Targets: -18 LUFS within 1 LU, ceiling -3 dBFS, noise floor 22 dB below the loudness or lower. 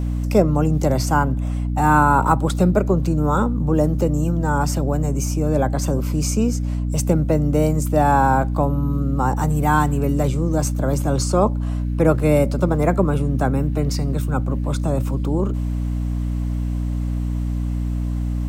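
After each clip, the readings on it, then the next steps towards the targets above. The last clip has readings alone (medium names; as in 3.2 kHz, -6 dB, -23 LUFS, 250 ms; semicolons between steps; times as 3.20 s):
hum 60 Hz; highest harmonic 300 Hz; hum level -20 dBFS; loudness -20.0 LUFS; peak level -2.5 dBFS; loudness target -18.0 LUFS
-> hum notches 60/120/180/240/300 Hz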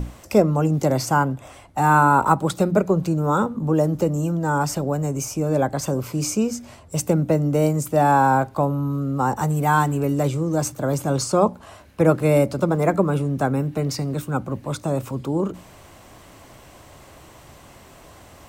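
hum not found; loudness -21.0 LUFS; peak level -3.5 dBFS; loudness target -18.0 LUFS
-> trim +3 dB; peak limiter -3 dBFS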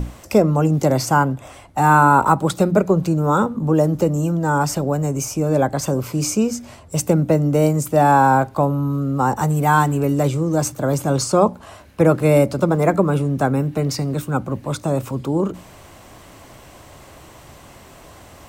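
loudness -18.5 LUFS; peak level -3.0 dBFS; noise floor -44 dBFS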